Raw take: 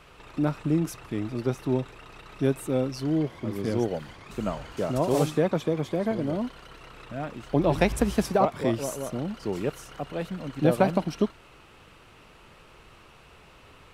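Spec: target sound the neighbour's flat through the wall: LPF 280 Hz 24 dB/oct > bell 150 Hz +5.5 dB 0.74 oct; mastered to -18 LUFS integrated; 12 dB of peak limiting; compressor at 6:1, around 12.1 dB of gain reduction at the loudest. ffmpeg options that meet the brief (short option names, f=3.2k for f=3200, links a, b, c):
-af "acompressor=threshold=-30dB:ratio=6,alimiter=level_in=4.5dB:limit=-24dB:level=0:latency=1,volume=-4.5dB,lowpass=f=280:w=0.5412,lowpass=f=280:w=1.3066,equalizer=f=150:t=o:w=0.74:g=5.5,volume=22dB"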